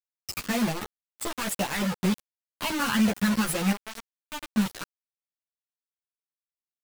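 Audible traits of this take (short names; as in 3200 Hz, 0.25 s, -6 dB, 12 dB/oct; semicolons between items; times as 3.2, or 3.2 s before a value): phasing stages 12, 2 Hz, lowest notch 610–1600 Hz; random-step tremolo, depth 70%; a quantiser's noise floor 6-bit, dither none; a shimmering, thickened sound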